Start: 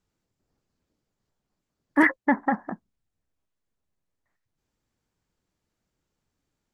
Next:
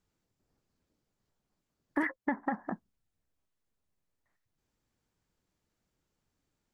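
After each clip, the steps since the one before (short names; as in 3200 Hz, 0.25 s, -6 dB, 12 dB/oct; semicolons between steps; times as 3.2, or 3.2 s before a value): compressor 6:1, threshold -27 dBFS, peak gain reduction 12.5 dB; gain -1.5 dB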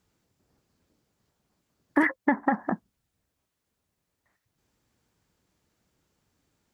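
HPF 47 Hz; gain +8.5 dB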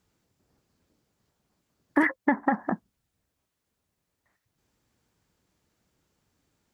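nothing audible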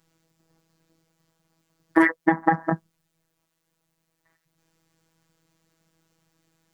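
robotiser 163 Hz; gain +7 dB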